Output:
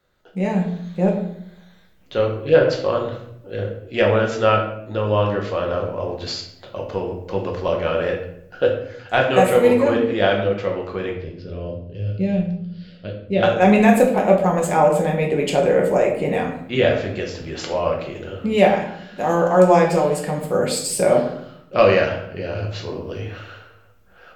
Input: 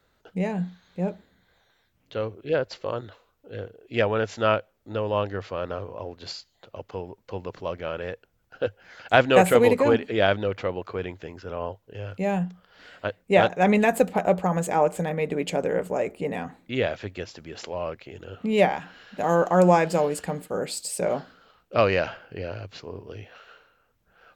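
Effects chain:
0:11.10–0:13.43: drawn EQ curve 120 Hz 0 dB, 570 Hz −8 dB, 850 Hz −24 dB, 4,700 Hz −3 dB, 7,100 Hz −23 dB
automatic gain control gain up to 10 dB
rectangular room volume 140 cubic metres, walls mixed, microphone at 0.95 metres
level −3.5 dB

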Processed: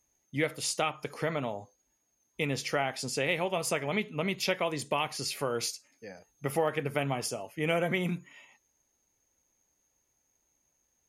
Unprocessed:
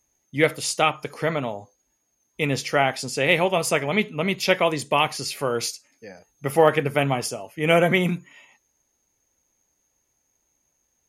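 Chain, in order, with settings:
downward compressor 2.5 to 1, threshold −24 dBFS, peak gain reduction 9 dB
level −4 dB

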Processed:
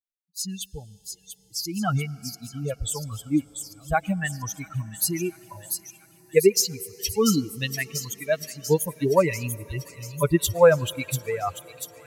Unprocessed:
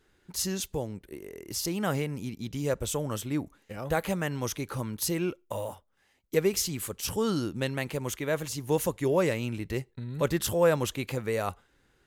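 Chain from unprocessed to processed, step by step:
spectral dynamics exaggerated over time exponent 3
automatic gain control gain up to 12 dB
delay with a high-pass on its return 691 ms, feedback 64%, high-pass 4,700 Hz, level −4.5 dB
on a send at −22 dB: convolution reverb RT60 6.0 s, pre-delay 88 ms

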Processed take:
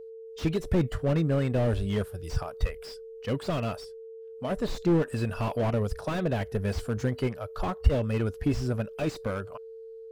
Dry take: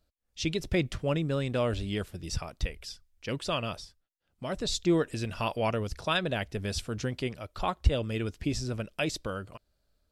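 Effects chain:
noise reduction from a noise print of the clip's start 10 dB
in parallel at −2 dB: brickwall limiter −21.5 dBFS, peak gain reduction 10.5 dB
on the sum: steady tone 450 Hz −41 dBFS
slew-rate limiting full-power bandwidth 34 Hz

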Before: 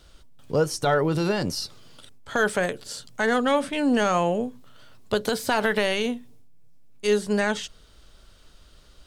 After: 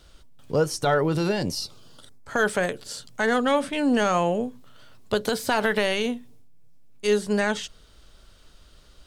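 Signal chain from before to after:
0:01.28–0:02.38: parametric band 1,100 Hz → 3,700 Hz −15 dB 0.29 octaves

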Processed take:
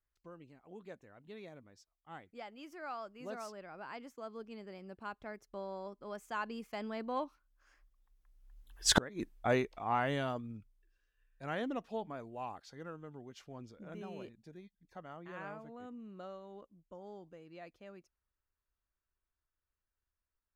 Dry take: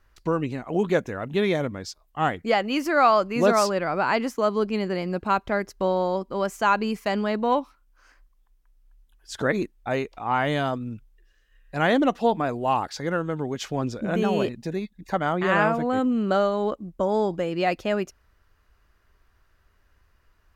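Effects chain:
source passing by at 0:08.95, 16 m/s, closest 1.5 metres
gate with flip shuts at −21 dBFS, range −31 dB
level +11.5 dB

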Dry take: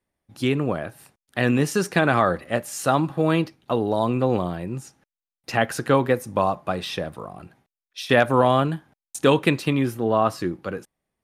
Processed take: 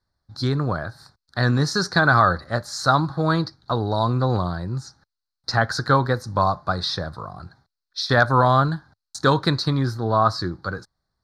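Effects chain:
drawn EQ curve 100 Hz 0 dB, 230 Hz −12 dB, 500 Hz −13 dB, 1,500 Hz −1 dB, 2,800 Hz −30 dB, 4,200 Hz +7 dB, 6,700 Hz −10 dB, 11,000 Hz −22 dB
level +9 dB

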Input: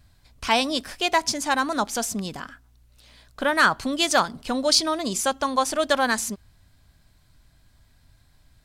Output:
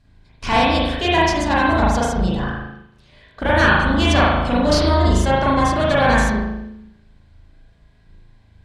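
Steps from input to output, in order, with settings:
sub-octave generator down 2 octaves, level +3 dB
notch filter 1,300 Hz, Q 8.6
in parallel at −1 dB: downward compressor, threshold −31 dBFS, peak gain reduction 15.5 dB
on the sum: asymmetric clip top −20.5 dBFS
high-frequency loss of the air 65 metres
on a send: feedback echo with a low-pass in the loop 162 ms, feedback 35%, low-pass 1,000 Hz, level −12 dB
on the sum: spring reverb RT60 1 s, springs 37 ms, chirp 60 ms, DRR −7 dB
noise reduction from a noise print of the clip's start 7 dB
level −1 dB

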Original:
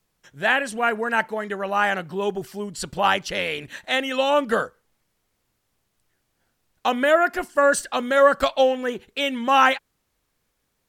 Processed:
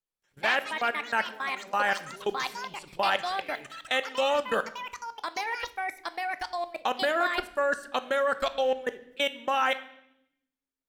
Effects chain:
parametric band 89 Hz −9.5 dB 2.1 octaves
output level in coarse steps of 24 dB
convolution reverb RT60 0.80 s, pre-delay 5 ms, DRR 11 dB
delay with pitch and tempo change per echo 102 ms, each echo +5 semitones, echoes 3, each echo −6 dB
level −1.5 dB

